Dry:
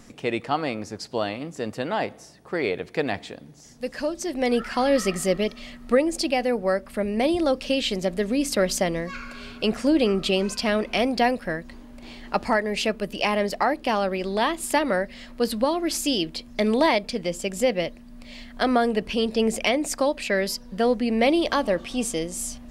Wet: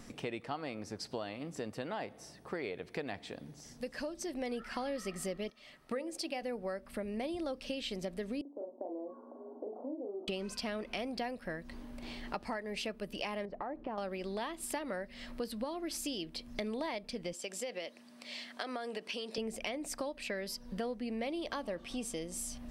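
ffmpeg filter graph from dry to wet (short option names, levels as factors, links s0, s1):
-filter_complex "[0:a]asettb=1/sr,asplit=3[s0][s1][s2];[s0]atrim=end=5.504[s3];[s1]atrim=start=5.5:end=6.42,asetpts=PTS-STARTPTS,afade=t=in:d=0.004:c=qsin,afade=t=out:st=0.916:d=0.004:c=qsin,highpass=f=220:p=1,bandreject=f=60:t=h:w=6,bandreject=f=120:t=h:w=6,bandreject=f=180:t=h:w=6,bandreject=f=240:t=h:w=6,bandreject=f=300:t=h:w=6,bandreject=f=360:t=h:w=6,bandreject=f=420:t=h:w=6,bandreject=f=480:t=h:w=6,bandreject=f=540:t=h:w=6,agate=range=0.398:threshold=0.00891:ratio=16:release=100:detection=peak[s4];[s2]atrim=start=6.416[s5];[s3][s4]acrossfade=d=0.004:c1=hsin:c2=qsin[s6];[s6][s5]acrossfade=d=0.004:c1=qsin:c2=hsin,asettb=1/sr,asplit=3[s7][s8][s9];[s7]atrim=end=8.414[s10];[s8]atrim=start=8.41:end=10.28,asetpts=PTS-STARTPTS,afade=t=in:d=0.004:c=qsin,afade=t=out:st=1.866:d=0.004:c=qsin,acompressor=threshold=0.0282:ratio=6:attack=3.2:release=140:knee=1:detection=peak,asuperpass=centerf=490:order=12:qfactor=0.74,asplit=2[s11][s12];[s12]adelay=39,volume=0.631[s13];[s11][s13]amix=inputs=2:normalize=0,atrim=end_sample=82467[s14];[s9]atrim=start=10.276[s15];[s10][s14]acrossfade=d=0.004:c1=hsin:c2=qsin[s16];[s16][s15]acrossfade=d=0.004:c1=qsin:c2=hsin,asettb=1/sr,asplit=3[s17][s18][s19];[s17]atrim=end=13.454[s20];[s18]atrim=start=13.45:end=13.98,asetpts=PTS-STARTPTS,afade=t=in:d=0.004:c=qsin,afade=t=out:st=0.526:d=0.004:c=qsin,lowpass=1100,acompressor=threshold=0.0447:ratio=2.5:attack=3.2:release=140:knee=1:detection=peak[s21];[s19]atrim=start=13.976[s22];[s20][s21]acrossfade=d=0.004:c1=hsin:c2=qsin[s23];[s23][s22]acrossfade=d=0.004:c1=qsin:c2=hsin,asettb=1/sr,asplit=3[s24][s25][s26];[s24]atrim=end=17.334[s27];[s25]atrim=start=17.33:end=19.38,asetpts=PTS-STARTPTS,afade=t=in:d=0.004:c=qsin,afade=t=out:st=2.046:d=0.004:c=qsin,aemphasis=mode=production:type=bsi,acompressor=threshold=0.0562:ratio=3:attack=3.2:release=140:knee=1:detection=peak,highpass=240,lowpass=6300[s28];[s26]atrim=start=19.376[s29];[s27][s28]acrossfade=d=0.004:c1=hsin:c2=qsin[s30];[s30][s29]acrossfade=d=0.004:c1=qsin:c2=hsin,bandreject=f=6900:w=12,acompressor=threshold=0.0178:ratio=4,volume=0.708"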